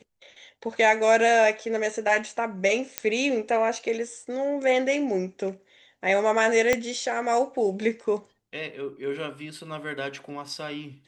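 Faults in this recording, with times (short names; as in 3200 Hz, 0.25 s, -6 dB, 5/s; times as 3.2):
2.98 pop -7 dBFS
6.73 pop -7 dBFS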